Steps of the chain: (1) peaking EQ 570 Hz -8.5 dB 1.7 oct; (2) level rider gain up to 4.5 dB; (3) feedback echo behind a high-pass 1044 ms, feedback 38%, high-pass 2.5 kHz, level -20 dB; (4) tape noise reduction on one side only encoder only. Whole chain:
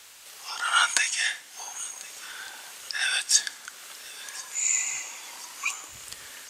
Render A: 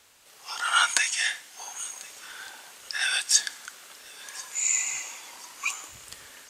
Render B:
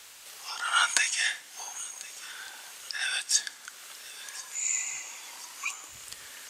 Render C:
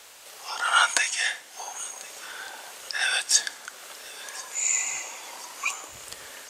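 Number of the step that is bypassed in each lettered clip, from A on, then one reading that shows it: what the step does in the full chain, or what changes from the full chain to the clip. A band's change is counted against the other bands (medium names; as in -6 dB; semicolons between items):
4, momentary loudness spread change +3 LU; 2, crest factor change +2.0 dB; 1, 500 Hz band +7.0 dB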